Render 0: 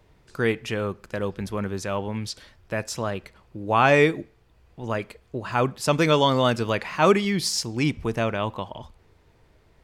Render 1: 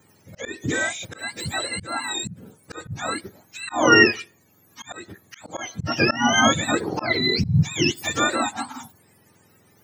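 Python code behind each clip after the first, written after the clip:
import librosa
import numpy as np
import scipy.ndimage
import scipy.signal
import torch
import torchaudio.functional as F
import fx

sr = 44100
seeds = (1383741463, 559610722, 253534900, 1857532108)

y = fx.octave_mirror(x, sr, pivot_hz=900.0)
y = fx.auto_swell(y, sr, attack_ms=242.0)
y = fx.spec_repair(y, sr, seeds[0], start_s=0.76, length_s=0.26, low_hz=2200.0, high_hz=7300.0, source='before')
y = F.gain(torch.from_numpy(y), 5.5).numpy()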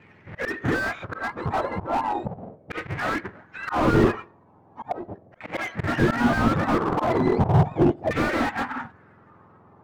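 y = fx.halfwave_hold(x, sr)
y = fx.filter_lfo_lowpass(y, sr, shape='saw_down', hz=0.37, low_hz=600.0, high_hz=2300.0, q=3.6)
y = fx.slew_limit(y, sr, full_power_hz=99.0)
y = F.gain(torch.from_numpy(y), -2.0).numpy()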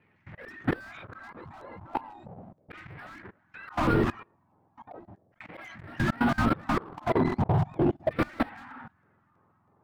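y = fx.level_steps(x, sr, step_db=22)
y = fx.filter_lfo_notch(y, sr, shape='square', hz=3.1, low_hz=460.0, high_hz=6600.0, q=0.86)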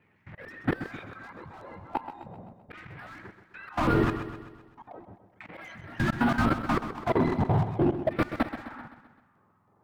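y = fx.echo_feedback(x, sr, ms=129, feedback_pct=52, wet_db=-10.5)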